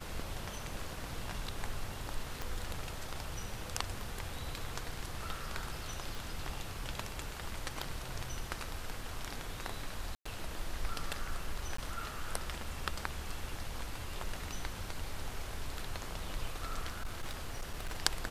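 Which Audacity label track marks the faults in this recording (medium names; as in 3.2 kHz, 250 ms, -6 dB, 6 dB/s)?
2.420000	2.420000	pop
6.150000	6.150000	pop
10.150000	10.260000	dropout 105 ms
11.770000	11.780000	dropout 14 ms
16.890000	18.000000	clipped -33.5 dBFS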